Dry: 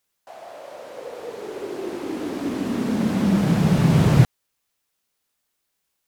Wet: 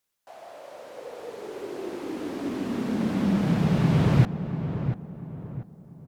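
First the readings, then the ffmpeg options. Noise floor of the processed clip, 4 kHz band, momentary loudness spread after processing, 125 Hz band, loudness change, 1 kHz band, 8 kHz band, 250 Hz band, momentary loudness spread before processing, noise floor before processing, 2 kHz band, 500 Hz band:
-50 dBFS, -5.5 dB, 21 LU, -4.0 dB, -5.0 dB, -4.0 dB, -9.0 dB, -4.0 dB, 21 LU, -76 dBFS, -4.5 dB, -4.0 dB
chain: -filter_complex "[0:a]acrossover=split=4800[a][b];[b]acompressor=threshold=-48dB:ratio=4:attack=1:release=60[c];[a][c]amix=inputs=2:normalize=0,asplit=2[d][e];[e]adelay=690,lowpass=f=1.3k:p=1,volume=-8.5dB,asplit=2[f][g];[g]adelay=690,lowpass=f=1.3k:p=1,volume=0.39,asplit=2[h][i];[i]adelay=690,lowpass=f=1.3k:p=1,volume=0.39,asplit=2[j][k];[k]adelay=690,lowpass=f=1.3k:p=1,volume=0.39[l];[d][f][h][j][l]amix=inputs=5:normalize=0,volume=-4.5dB"

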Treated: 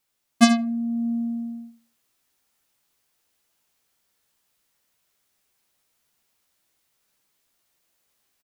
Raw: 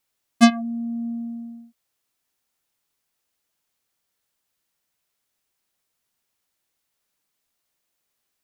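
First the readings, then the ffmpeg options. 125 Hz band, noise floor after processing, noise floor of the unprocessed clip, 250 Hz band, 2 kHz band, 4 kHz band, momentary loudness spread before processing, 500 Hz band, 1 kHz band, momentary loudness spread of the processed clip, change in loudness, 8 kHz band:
n/a, -75 dBFS, -78 dBFS, 0.0 dB, -1.0 dB, +0.5 dB, 18 LU, -1.5 dB, -1.5 dB, 15 LU, -1.5 dB, +3.0 dB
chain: -filter_complex "[0:a]asplit=2[a][b];[b]adelay=82,lowpass=f=1.4k:p=1,volume=-20dB,asplit=2[c][d];[d]adelay=82,lowpass=f=1.4k:p=1,volume=0.36,asplit=2[e][f];[f]adelay=82,lowpass=f=1.4k:p=1,volume=0.36[g];[c][e][g]amix=inputs=3:normalize=0[h];[a][h]amix=inputs=2:normalize=0,dynaudnorm=f=280:g=3:m=4.5dB,asplit=2[i][j];[j]aecho=0:1:15|73:0.398|0.282[k];[i][k]amix=inputs=2:normalize=0"

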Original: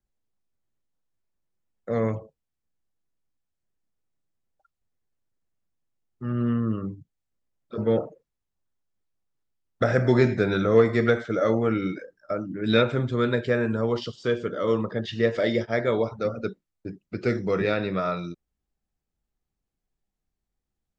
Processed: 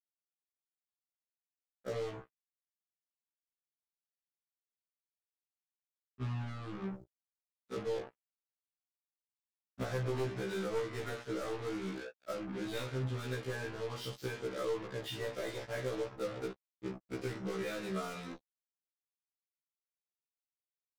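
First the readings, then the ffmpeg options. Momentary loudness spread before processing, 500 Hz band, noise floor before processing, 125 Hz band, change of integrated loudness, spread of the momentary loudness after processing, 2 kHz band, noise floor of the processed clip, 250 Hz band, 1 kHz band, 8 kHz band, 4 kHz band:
14 LU, -14.5 dB, -84 dBFS, -13.0 dB, -14.5 dB, 8 LU, -13.5 dB, under -85 dBFS, -16.0 dB, -13.0 dB, n/a, -10.0 dB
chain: -af "aecho=1:1:18|47:0.447|0.299,aeval=exprs='0.562*(cos(1*acos(clip(val(0)/0.562,-1,1)))-cos(1*PI/2))+0.251*(cos(2*acos(clip(val(0)/0.562,-1,1)))-cos(2*PI/2))+0.0562*(cos(3*acos(clip(val(0)/0.562,-1,1)))-cos(3*PI/2))+0.178*(cos(5*acos(clip(val(0)/0.562,-1,1)))-cos(5*PI/2))+0.0158*(cos(7*acos(clip(val(0)/0.562,-1,1)))-cos(7*PI/2))':c=same,acompressor=threshold=-29dB:ratio=8,acrusher=bits=5:mix=0:aa=0.5,afftfilt=real='re*1.73*eq(mod(b,3),0)':imag='im*1.73*eq(mod(b,3),0)':win_size=2048:overlap=0.75,volume=-4.5dB"

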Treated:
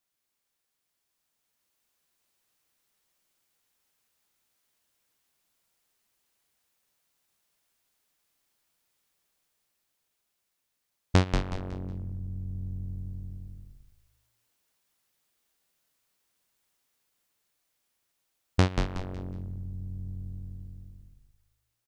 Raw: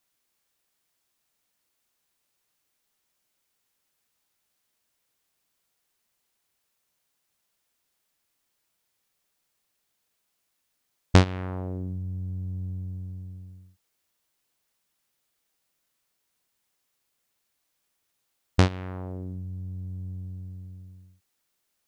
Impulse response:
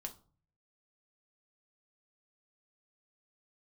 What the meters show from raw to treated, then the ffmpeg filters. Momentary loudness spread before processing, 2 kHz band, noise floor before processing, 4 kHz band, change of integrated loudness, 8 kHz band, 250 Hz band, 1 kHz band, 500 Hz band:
21 LU, -3.0 dB, -77 dBFS, -3.0 dB, -3.5 dB, -3.0 dB, -3.5 dB, -3.0 dB, -3.0 dB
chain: -filter_complex "[0:a]dynaudnorm=f=430:g=7:m=6dB,asplit=2[a][b];[b]asplit=4[c][d][e][f];[c]adelay=184,afreqshift=-52,volume=-5dB[g];[d]adelay=368,afreqshift=-104,volume=-14.6dB[h];[e]adelay=552,afreqshift=-156,volume=-24.3dB[i];[f]adelay=736,afreqshift=-208,volume=-33.9dB[j];[g][h][i][j]amix=inputs=4:normalize=0[k];[a][k]amix=inputs=2:normalize=0,volume=-6.5dB"

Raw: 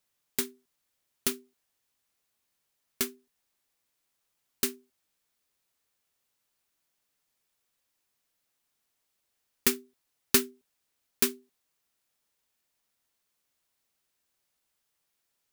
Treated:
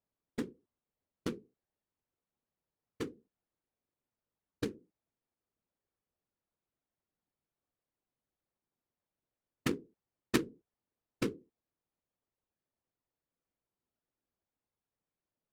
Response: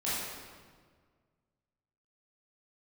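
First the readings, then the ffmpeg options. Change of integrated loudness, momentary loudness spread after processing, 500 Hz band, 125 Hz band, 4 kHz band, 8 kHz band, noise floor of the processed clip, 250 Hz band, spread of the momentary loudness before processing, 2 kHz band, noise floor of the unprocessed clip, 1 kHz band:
-10.0 dB, 13 LU, -4.0 dB, +5.5 dB, -12.0 dB, -19.0 dB, under -85 dBFS, -0.5 dB, 13 LU, -7.0 dB, -80 dBFS, -3.5 dB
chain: -af "afftfilt=real='hypot(re,im)*cos(2*PI*random(0))':imag='hypot(re,im)*sin(2*PI*random(1))':win_size=512:overlap=0.75,adynamicsmooth=sensitivity=1:basefreq=690,crystalizer=i=5:c=0,volume=5.5dB"

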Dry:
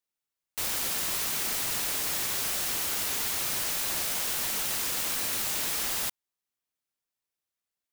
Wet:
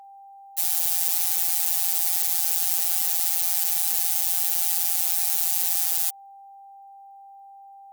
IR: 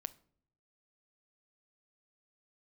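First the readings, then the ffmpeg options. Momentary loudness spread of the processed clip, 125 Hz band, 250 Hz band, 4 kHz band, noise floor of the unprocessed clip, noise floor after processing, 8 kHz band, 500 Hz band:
1 LU, under -10 dB, under -10 dB, -1.0 dB, under -85 dBFS, -47 dBFS, +4.5 dB, under -10 dB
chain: -af "afftfilt=real='hypot(re,im)*cos(PI*b)':imag='0':win_size=1024:overlap=0.75,crystalizer=i=5.5:c=0,aeval=exprs='val(0)+0.0178*sin(2*PI*790*n/s)':c=same,volume=-8.5dB"

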